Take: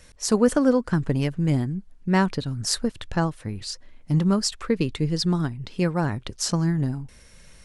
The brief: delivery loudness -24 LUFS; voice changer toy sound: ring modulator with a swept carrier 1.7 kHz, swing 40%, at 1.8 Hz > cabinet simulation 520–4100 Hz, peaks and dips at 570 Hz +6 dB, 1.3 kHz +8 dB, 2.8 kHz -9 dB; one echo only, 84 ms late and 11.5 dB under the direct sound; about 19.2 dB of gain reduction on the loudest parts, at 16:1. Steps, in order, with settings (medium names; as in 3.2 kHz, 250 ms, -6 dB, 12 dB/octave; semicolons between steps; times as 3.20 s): compression 16:1, threshold -33 dBFS; delay 84 ms -11.5 dB; ring modulator with a swept carrier 1.7 kHz, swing 40%, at 1.8 Hz; cabinet simulation 520–4100 Hz, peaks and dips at 570 Hz +6 dB, 1.3 kHz +8 dB, 2.8 kHz -9 dB; trim +13.5 dB